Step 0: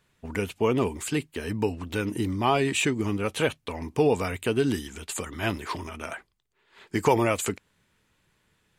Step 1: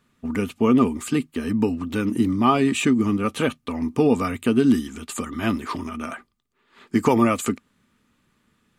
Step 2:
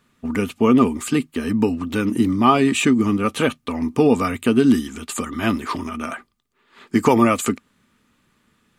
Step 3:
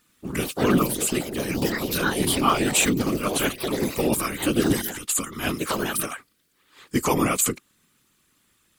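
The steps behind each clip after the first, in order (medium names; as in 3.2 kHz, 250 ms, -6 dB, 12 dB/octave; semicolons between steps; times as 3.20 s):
small resonant body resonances 240/1200 Hz, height 14 dB, ringing for 50 ms
bass shelf 330 Hz -2.5 dB; trim +4 dB
whisper effect; ever faster or slower copies 92 ms, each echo +4 st, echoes 3, each echo -6 dB; pre-emphasis filter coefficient 0.8; trim +6.5 dB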